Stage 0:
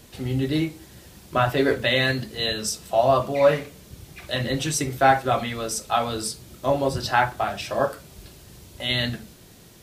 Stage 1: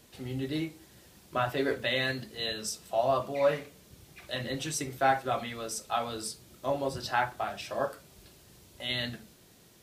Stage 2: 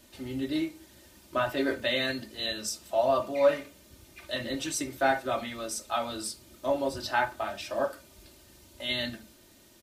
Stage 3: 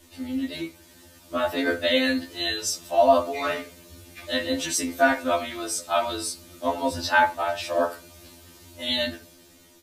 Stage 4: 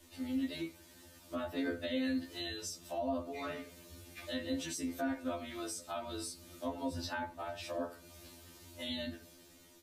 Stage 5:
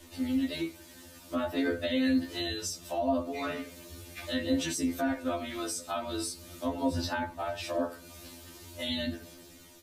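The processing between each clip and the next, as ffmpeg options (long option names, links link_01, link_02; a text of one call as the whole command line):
ffmpeg -i in.wav -af "lowshelf=frequency=130:gain=-7,volume=-8dB" out.wav
ffmpeg -i in.wav -af "aecho=1:1:3.3:0.63" out.wav
ffmpeg -i in.wav -af "dynaudnorm=framelen=600:gausssize=5:maxgain=3.5dB,afftfilt=real='re*2*eq(mod(b,4),0)':imag='im*2*eq(mod(b,4),0)':win_size=2048:overlap=0.75,volume=5.5dB" out.wav
ffmpeg -i in.wav -filter_complex "[0:a]acrossover=split=340[link_01][link_02];[link_02]acompressor=threshold=-35dB:ratio=4[link_03];[link_01][link_03]amix=inputs=2:normalize=0,volume=-6.5dB" out.wav
ffmpeg -i in.wav -af "aphaser=in_gain=1:out_gain=1:delay=4.1:decay=0.24:speed=0.43:type=sinusoidal,volume=6.5dB" out.wav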